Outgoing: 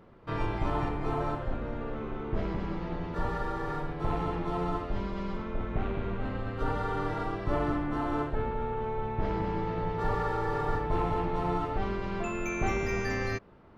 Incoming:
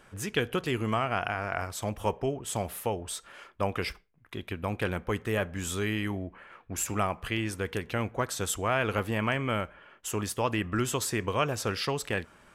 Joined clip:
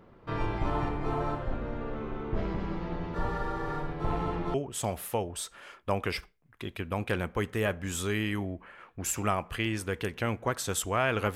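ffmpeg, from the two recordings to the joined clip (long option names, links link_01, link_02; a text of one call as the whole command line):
ffmpeg -i cue0.wav -i cue1.wav -filter_complex "[0:a]apad=whole_dur=11.35,atrim=end=11.35,atrim=end=4.542[link_01];[1:a]atrim=start=2.258:end=9.07[link_02];[link_01][link_02]acrossfade=duration=0.004:curve1=hsin:curve2=hsin" out.wav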